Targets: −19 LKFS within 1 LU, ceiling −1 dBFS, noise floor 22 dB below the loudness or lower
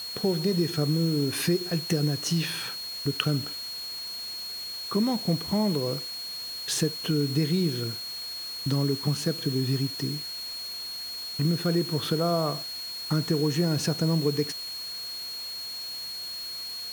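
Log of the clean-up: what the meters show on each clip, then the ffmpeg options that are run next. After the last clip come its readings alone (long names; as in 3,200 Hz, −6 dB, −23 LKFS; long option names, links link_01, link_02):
interfering tone 4,300 Hz; level of the tone −34 dBFS; background noise floor −36 dBFS; target noise floor −50 dBFS; integrated loudness −28.0 LKFS; sample peak −7.0 dBFS; target loudness −19.0 LKFS
→ -af "bandreject=frequency=4300:width=30"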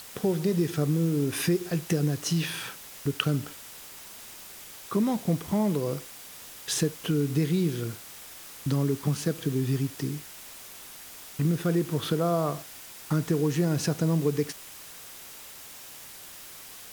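interfering tone none found; background noise floor −45 dBFS; target noise floor −50 dBFS
→ -af "afftdn=noise_reduction=6:noise_floor=-45"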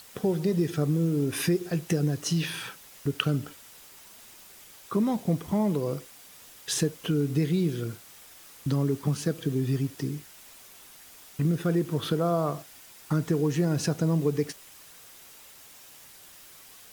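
background noise floor −51 dBFS; integrated loudness −28.0 LKFS; sample peak −7.5 dBFS; target loudness −19.0 LKFS
→ -af "volume=9dB,alimiter=limit=-1dB:level=0:latency=1"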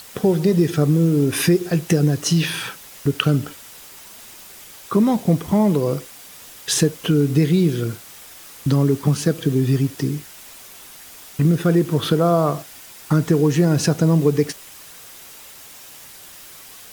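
integrated loudness −19.0 LKFS; sample peak −1.0 dBFS; background noise floor −42 dBFS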